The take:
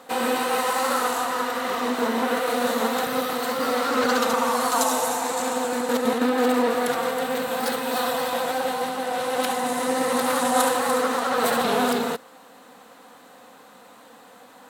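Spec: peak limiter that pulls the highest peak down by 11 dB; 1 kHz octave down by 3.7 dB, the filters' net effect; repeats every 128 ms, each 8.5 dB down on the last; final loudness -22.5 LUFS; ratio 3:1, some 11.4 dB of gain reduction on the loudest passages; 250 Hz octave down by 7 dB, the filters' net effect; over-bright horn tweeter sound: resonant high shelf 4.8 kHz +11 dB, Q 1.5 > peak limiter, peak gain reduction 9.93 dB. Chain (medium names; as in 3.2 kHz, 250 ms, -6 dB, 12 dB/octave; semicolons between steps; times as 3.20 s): peaking EQ 250 Hz -7 dB; peaking EQ 1 kHz -4 dB; compression 3:1, threshold -36 dBFS; peak limiter -27.5 dBFS; resonant high shelf 4.8 kHz +11 dB, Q 1.5; feedback delay 128 ms, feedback 38%, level -8.5 dB; trim +11.5 dB; peak limiter -13.5 dBFS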